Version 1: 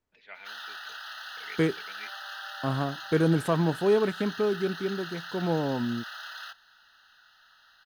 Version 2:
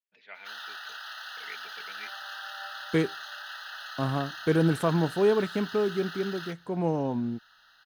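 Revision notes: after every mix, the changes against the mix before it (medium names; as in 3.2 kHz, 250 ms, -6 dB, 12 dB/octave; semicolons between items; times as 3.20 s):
second voice: entry +1.35 s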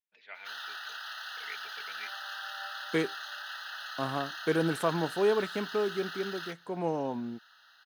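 master: add high-pass 440 Hz 6 dB/octave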